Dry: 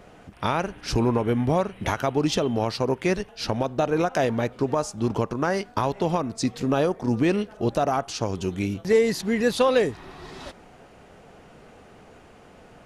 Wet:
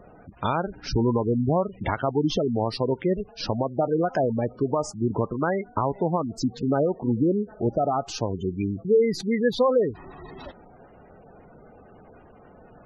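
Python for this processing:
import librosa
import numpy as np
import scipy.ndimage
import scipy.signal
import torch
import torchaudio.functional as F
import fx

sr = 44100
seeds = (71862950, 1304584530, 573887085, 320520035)

y = fx.tracing_dist(x, sr, depth_ms=0.066)
y = fx.spec_gate(y, sr, threshold_db=-15, keep='strong')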